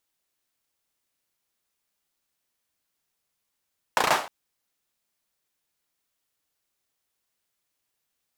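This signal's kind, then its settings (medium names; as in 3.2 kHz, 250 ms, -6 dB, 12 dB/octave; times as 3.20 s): hand clap length 0.31 s, bursts 5, apart 34 ms, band 830 Hz, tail 0.39 s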